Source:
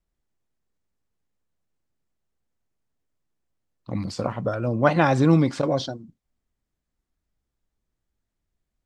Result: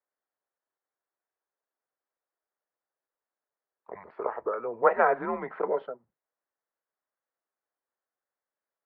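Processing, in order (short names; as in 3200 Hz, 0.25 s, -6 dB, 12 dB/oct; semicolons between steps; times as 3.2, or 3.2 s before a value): mistuned SSB -110 Hz 580–2000 Hz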